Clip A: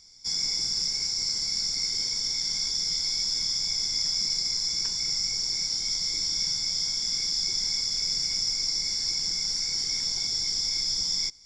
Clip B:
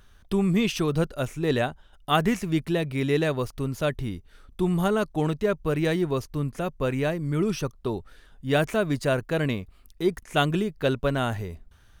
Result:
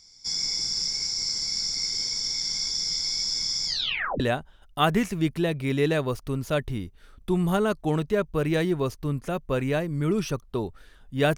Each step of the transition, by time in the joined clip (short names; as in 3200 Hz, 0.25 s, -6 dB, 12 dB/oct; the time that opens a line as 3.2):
clip A
3.66 tape stop 0.54 s
4.2 switch to clip B from 1.51 s